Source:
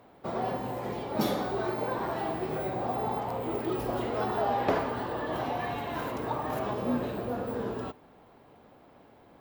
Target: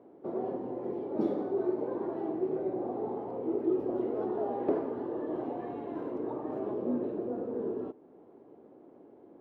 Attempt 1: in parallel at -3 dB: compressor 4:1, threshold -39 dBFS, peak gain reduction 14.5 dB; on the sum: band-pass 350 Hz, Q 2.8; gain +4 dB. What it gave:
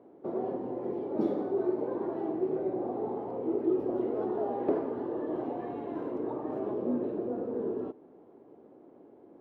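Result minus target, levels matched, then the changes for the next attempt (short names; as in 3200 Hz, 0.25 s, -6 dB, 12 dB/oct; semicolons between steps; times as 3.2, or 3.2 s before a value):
compressor: peak gain reduction -8 dB
change: compressor 4:1, threshold -49.5 dBFS, peak gain reduction 22.5 dB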